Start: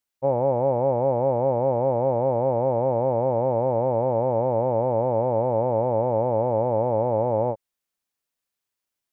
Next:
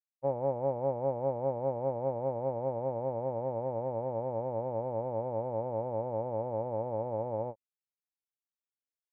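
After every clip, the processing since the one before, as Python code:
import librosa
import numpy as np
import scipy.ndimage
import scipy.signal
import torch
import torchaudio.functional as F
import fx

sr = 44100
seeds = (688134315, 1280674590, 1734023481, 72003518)

y = fx.upward_expand(x, sr, threshold_db=-31.0, expansion=2.5)
y = y * librosa.db_to_amplitude(-7.5)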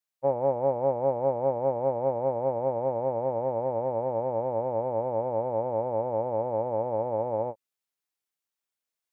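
y = fx.low_shelf(x, sr, hz=220.0, db=-8.0)
y = y * librosa.db_to_amplitude(7.0)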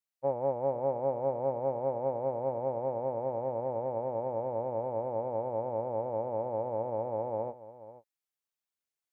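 y = x + 10.0 ** (-15.5 / 20.0) * np.pad(x, (int(484 * sr / 1000.0), 0))[:len(x)]
y = y * librosa.db_to_amplitude(-5.0)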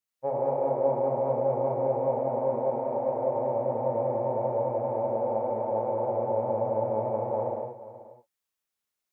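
y = fx.rev_gated(x, sr, seeds[0], gate_ms=250, shape='flat', drr_db=-4.0)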